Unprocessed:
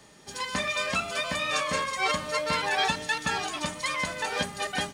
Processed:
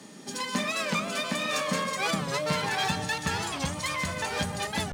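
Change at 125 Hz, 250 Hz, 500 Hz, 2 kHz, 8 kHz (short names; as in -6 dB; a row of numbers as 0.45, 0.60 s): +6.5, +5.0, 0.0, -2.0, +1.0 dB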